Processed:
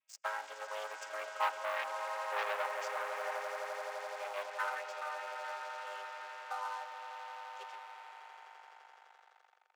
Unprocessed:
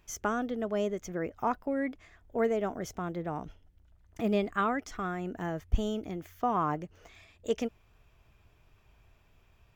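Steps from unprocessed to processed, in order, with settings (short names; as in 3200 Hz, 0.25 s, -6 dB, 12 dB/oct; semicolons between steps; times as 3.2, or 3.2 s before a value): chord vocoder major triad, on G#3; Doppler pass-by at 2.1, 11 m/s, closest 11 m; bell 2600 Hz +3.5 dB; on a send: swelling echo 85 ms, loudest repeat 8, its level -13.5 dB; on the sum: sample leveller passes 3; Bessel high-pass 1100 Hz, order 8; gain +1 dB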